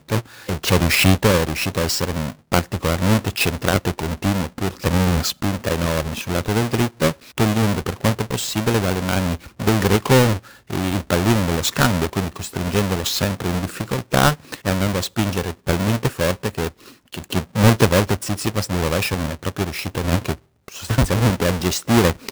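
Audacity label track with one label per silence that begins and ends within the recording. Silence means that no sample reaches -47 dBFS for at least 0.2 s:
20.390000	20.680000	silence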